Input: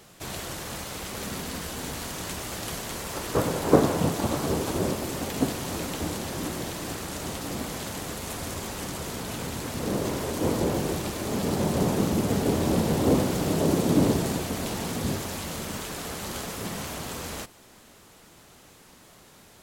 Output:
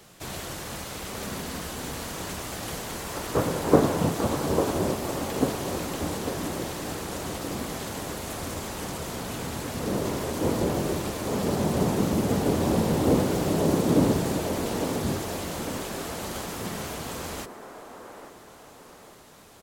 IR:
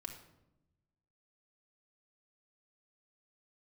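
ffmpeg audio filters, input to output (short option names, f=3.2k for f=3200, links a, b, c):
-filter_complex "[0:a]acrossover=split=270|1800[a][b][c];[b]aecho=1:1:849|1698|2547|3396|4245:0.562|0.247|0.109|0.0479|0.0211[d];[c]asoftclip=type=tanh:threshold=-31dB[e];[a][d][e]amix=inputs=3:normalize=0"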